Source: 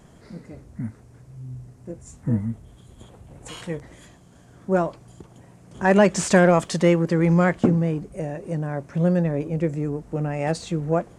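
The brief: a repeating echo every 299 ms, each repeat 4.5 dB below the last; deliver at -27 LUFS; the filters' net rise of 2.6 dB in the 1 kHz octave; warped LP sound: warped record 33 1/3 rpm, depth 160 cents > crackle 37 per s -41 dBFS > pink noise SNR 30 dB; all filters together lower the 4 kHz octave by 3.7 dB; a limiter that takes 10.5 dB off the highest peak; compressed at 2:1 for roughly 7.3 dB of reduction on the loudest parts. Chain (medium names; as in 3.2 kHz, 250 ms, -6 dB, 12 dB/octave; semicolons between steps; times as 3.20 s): peaking EQ 1 kHz +4 dB; peaking EQ 4 kHz -5.5 dB; compression 2:1, threshold -23 dBFS; peak limiter -19 dBFS; feedback delay 299 ms, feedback 60%, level -4.5 dB; warped record 33 1/3 rpm, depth 160 cents; crackle 37 per s -41 dBFS; pink noise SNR 30 dB; trim +2.5 dB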